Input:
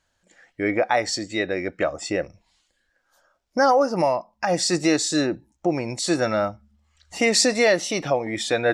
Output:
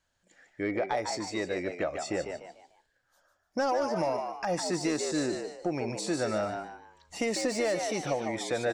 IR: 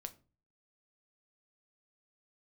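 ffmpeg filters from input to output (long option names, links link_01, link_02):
-filter_complex "[0:a]asoftclip=type=tanh:threshold=-10.5dB,asplit=5[link_01][link_02][link_03][link_04][link_05];[link_02]adelay=148,afreqshift=84,volume=-7.5dB[link_06];[link_03]adelay=296,afreqshift=168,volume=-16.9dB[link_07];[link_04]adelay=444,afreqshift=252,volume=-26.2dB[link_08];[link_05]adelay=592,afreqshift=336,volume=-35.6dB[link_09];[link_01][link_06][link_07][link_08][link_09]amix=inputs=5:normalize=0,acrossover=split=960|2100|5100[link_10][link_11][link_12][link_13];[link_10]acompressor=threshold=-20dB:ratio=4[link_14];[link_11]acompressor=threshold=-34dB:ratio=4[link_15];[link_12]acompressor=threshold=-40dB:ratio=4[link_16];[link_13]acompressor=threshold=-32dB:ratio=4[link_17];[link_14][link_15][link_16][link_17]amix=inputs=4:normalize=0,volume=-6dB"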